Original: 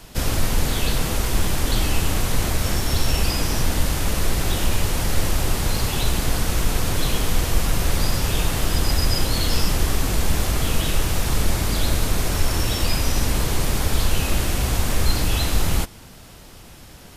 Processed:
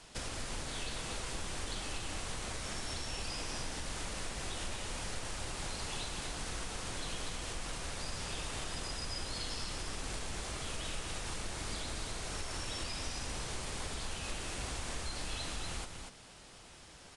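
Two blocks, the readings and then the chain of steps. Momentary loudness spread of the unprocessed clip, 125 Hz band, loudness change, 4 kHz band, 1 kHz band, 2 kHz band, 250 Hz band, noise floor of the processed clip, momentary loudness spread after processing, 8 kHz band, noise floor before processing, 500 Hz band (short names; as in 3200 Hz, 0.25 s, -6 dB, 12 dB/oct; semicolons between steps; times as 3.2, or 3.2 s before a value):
2 LU, -22.0 dB, -17.0 dB, -14.0 dB, -14.5 dB, -14.0 dB, -19.5 dB, -55 dBFS, 2 LU, -14.0 dB, -43 dBFS, -16.5 dB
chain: low shelf 350 Hz -9 dB; compressor, threshold -28 dBFS, peak gain reduction 9.5 dB; on a send: echo 0.242 s -6 dB; on the sum: downsampling 22050 Hz; gain -8.5 dB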